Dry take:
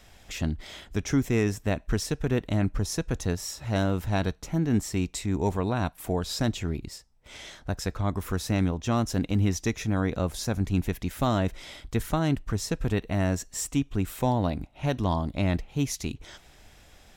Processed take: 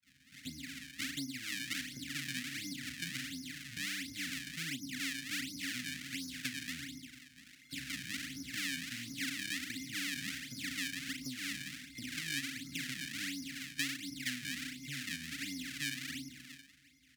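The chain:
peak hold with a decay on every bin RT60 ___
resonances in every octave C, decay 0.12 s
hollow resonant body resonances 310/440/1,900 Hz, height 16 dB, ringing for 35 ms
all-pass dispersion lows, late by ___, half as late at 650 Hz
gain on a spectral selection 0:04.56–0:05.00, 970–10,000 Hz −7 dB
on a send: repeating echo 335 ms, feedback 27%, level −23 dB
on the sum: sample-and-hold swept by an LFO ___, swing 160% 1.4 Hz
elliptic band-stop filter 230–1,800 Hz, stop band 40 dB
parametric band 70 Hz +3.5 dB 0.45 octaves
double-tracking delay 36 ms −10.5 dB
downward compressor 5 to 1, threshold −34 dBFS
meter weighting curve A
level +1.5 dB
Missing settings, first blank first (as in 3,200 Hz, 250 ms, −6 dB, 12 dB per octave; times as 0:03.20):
1.08 s, 42 ms, 37×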